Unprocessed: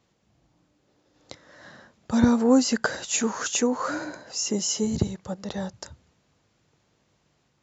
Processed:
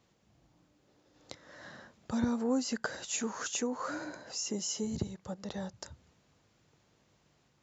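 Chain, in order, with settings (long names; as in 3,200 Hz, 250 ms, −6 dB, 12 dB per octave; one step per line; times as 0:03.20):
downward compressor 1.5 to 1, threshold −45 dBFS, peak gain reduction 11.5 dB
level −1.5 dB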